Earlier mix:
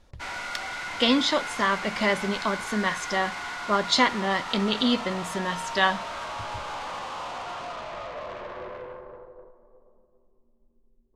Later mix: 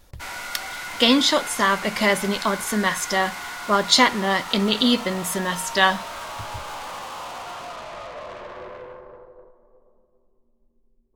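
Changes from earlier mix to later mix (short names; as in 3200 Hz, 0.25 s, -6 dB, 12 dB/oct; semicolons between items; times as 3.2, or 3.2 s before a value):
speech +4.0 dB; master: remove air absorption 72 m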